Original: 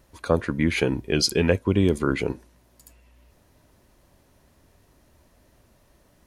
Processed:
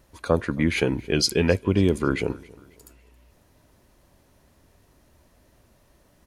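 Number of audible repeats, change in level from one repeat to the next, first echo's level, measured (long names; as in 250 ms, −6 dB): 2, −7.5 dB, −23.0 dB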